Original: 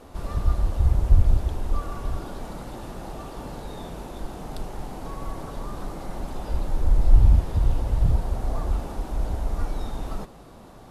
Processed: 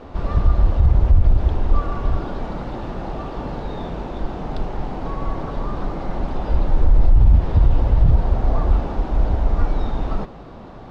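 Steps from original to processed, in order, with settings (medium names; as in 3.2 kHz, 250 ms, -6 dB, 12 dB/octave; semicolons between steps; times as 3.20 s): distance through air 210 m; loudness maximiser +13 dB; trim -4.5 dB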